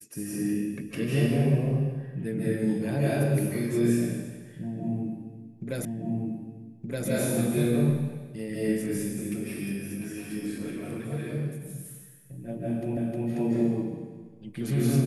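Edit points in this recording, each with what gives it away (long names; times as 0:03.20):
0:05.85: the same again, the last 1.22 s
0:12.97: the same again, the last 0.31 s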